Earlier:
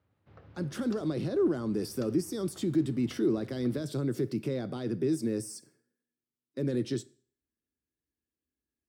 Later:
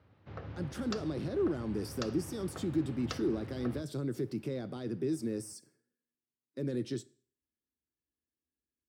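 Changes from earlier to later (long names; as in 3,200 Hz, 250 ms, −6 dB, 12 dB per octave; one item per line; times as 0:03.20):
speech −4.5 dB
background +10.5 dB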